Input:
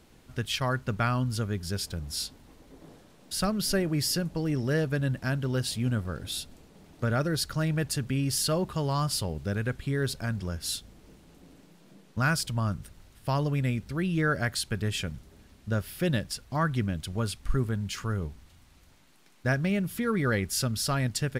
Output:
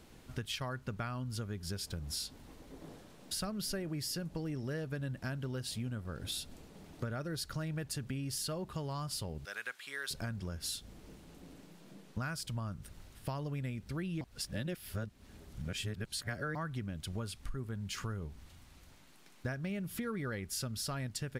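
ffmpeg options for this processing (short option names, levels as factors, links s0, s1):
-filter_complex "[0:a]asettb=1/sr,asplit=3[s0][s1][s2];[s0]atrim=end=9.454[s3];[s1]atrim=start=9.45:end=10.11,asetpts=PTS-STARTPTS,afade=t=in:d=0.004:c=qsin,afade=t=out:st=0.656:d=0.004:c=qsin,highpass=1200[s4];[s2]atrim=start=10.106[s5];[s3][s4]acrossfade=d=0.004:c1=hsin:c2=qsin[s6];[s6][s5]acrossfade=d=0.004:c1=qsin:c2=hsin,asplit=3[s7][s8][s9];[s7]atrim=end=14.212[s10];[s8]atrim=start=14.208:end=16.552,asetpts=PTS-STARTPTS,areverse[s11];[s9]atrim=start=16.548[s12];[s10][s11]acrossfade=d=0.004:c1=hsin:c2=hsin[s13];[s13][s12]acrossfade=d=0.004:c1=hsin:c2=hsin,acompressor=threshold=0.0158:ratio=6"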